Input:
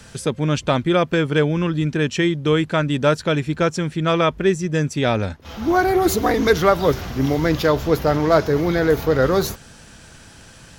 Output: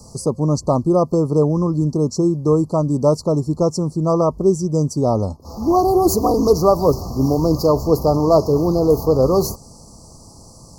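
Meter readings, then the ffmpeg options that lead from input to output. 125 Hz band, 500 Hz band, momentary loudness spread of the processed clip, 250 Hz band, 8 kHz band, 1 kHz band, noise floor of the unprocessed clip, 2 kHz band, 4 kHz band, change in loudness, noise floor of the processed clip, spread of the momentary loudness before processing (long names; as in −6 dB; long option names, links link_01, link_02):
+2.5 dB, +2.5 dB, 5 LU, +2.5 dB, +2.5 dB, +1.0 dB, −44 dBFS, below −35 dB, −7.0 dB, +2.0 dB, −43 dBFS, 5 LU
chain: -af "asuperstop=centerf=2300:order=20:qfactor=0.71,volume=2.5dB"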